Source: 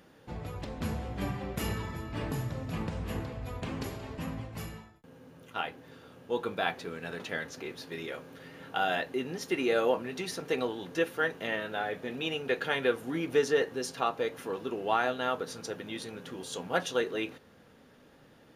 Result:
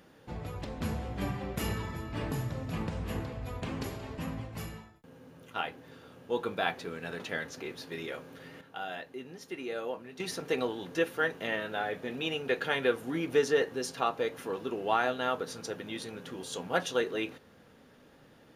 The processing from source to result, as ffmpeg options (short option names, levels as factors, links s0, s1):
-filter_complex "[0:a]asplit=3[s0][s1][s2];[s0]atrim=end=8.612[s3];[s1]atrim=start=8.608:end=10.202,asetpts=PTS-STARTPTS,volume=0.335[s4];[s2]atrim=start=10.198[s5];[s3][s4]acrossfade=d=0.004:c1=hsin:c2=hsin[s6];[s6][s5]acrossfade=d=0.004:c1=hsin:c2=hsin"